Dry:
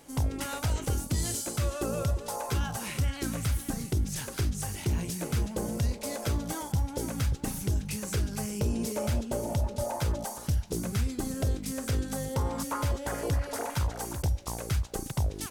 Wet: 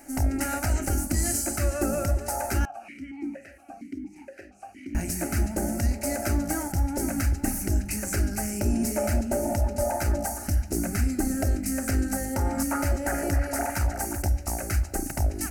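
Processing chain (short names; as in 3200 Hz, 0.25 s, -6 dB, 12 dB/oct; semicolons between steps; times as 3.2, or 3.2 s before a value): fixed phaser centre 700 Hz, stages 8; reverb RT60 1.6 s, pre-delay 7 ms, DRR 15 dB; 2.65–4.95 vowel sequencer 4.3 Hz; gain +8 dB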